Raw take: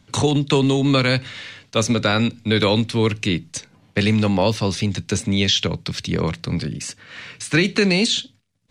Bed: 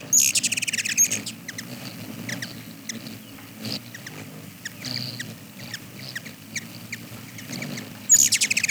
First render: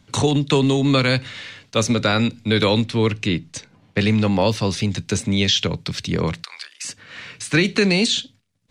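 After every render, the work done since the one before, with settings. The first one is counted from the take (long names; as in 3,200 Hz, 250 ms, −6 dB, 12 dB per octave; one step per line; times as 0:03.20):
0:02.85–0:04.32: high-shelf EQ 7,900 Hz −9.5 dB
0:06.43–0:06.85: high-pass filter 1,000 Hz 24 dB per octave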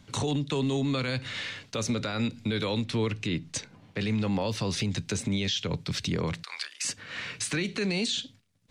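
downward compressor 5 to 1, threshold −24 dBFS, peak gain reduction 11 dB
brickwall limiter −20 dBFS, peak gain reduction 9 dB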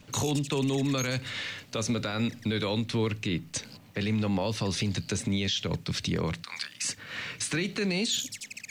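mix in bed −20 dB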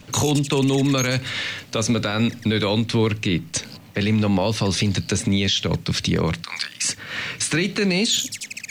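level +8.5 dB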